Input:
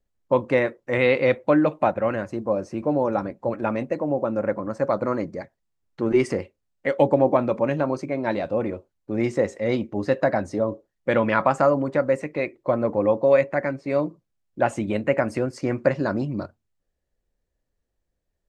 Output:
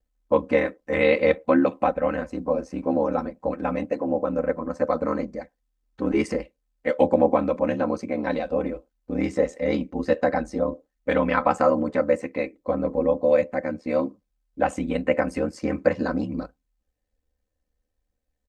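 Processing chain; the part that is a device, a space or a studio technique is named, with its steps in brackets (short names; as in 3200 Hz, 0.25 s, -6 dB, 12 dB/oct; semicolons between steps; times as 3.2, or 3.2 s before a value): 12.42–13.81 bell 1600 Hz -5 dB 2.4 oct; ring-modulated robot voice (ring modulator 38 Hz; comb 3.9 ms, depth 69%)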